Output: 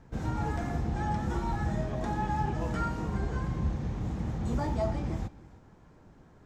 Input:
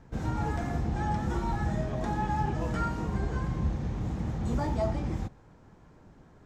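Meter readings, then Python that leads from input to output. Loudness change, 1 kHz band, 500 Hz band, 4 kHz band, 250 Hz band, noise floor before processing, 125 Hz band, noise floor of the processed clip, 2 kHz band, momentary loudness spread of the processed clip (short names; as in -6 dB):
-1.0 dB, -1.0 dB, -1.0 dB, -1.0 dB, -1.0 dB, -57 dBFS, -1.0 dB, -57 dBFS, -1.0 dB, 4 LU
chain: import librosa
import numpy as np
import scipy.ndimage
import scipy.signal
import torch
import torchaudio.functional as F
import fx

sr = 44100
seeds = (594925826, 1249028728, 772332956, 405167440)

y = x + 10.0 ** (-20.0 / 20.0) * np.pad(x, (int(313 * sr / 1000.0), 0))[:len(x)]
y = y * 10.0 ** (-1.0 / 20.0)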